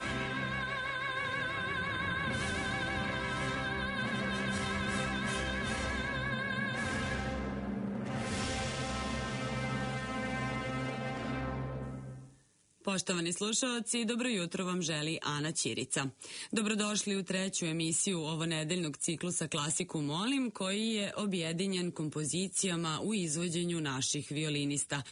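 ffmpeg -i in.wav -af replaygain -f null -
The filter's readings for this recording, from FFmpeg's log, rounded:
track_gain = +15.9 dB
track_peak = 0.071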